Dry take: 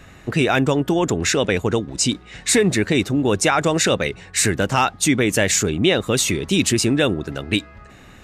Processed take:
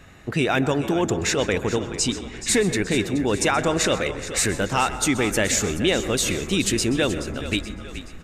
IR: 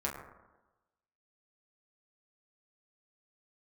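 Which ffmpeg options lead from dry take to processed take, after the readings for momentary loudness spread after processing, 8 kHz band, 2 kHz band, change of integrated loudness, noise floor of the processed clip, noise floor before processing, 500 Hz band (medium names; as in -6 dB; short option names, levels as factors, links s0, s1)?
6 LU, -3.0 dB, -3.0 dB, -3.5 dB, -39 dBFS, -44 dBFS, -3.0 dB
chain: -filter_complex "[0:a]asplit=6[s0][s1][s2][s3][s4][s5];[s1]adelay=426,afreqshift=-36,volume=0.224[s6];[s2]adelay=852,afreqshift=-72,volume=0.11[s7];[s3]adelay=1278,afreqshift=-108,volume=0.0537[s8];[s4]adelay=1704,afreqshift=-144,volume=0.0263[s9];[s5]adelay=2130,afreqshift=-180,volume=0.0129[s10];[s0][s6][s7][s8][s9][s10]amix=inputs=6:normalize=0,asplit=2[s11][s12];[1:a]atrim=start_sample=2205,adelay=128[s13];[s12][s13]afir=irnorm=-1:irlink=0,volume=0.158[s14];[s11][s14]amix=inputs=2:normalize=0,asubboost=boost=4:cutoff=52,volume=0.668"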